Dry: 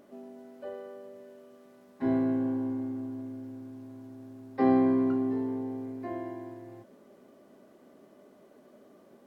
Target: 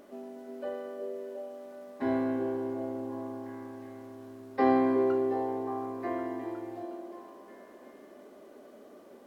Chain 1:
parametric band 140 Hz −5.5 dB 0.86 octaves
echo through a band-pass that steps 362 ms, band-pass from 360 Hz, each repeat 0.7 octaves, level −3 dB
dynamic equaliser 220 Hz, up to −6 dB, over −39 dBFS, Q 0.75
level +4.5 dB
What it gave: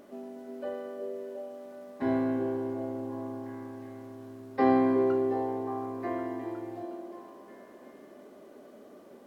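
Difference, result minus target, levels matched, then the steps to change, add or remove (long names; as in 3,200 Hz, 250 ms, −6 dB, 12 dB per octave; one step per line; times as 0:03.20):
125 Hz band +3.5 dB
change: parametric band 140 Hz −13 dB 0.86 octaves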